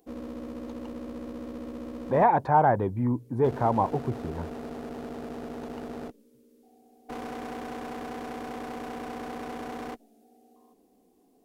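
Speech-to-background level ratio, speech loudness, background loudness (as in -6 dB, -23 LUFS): 13.5 dB, -25.0 LUFS, -38.5 LUFS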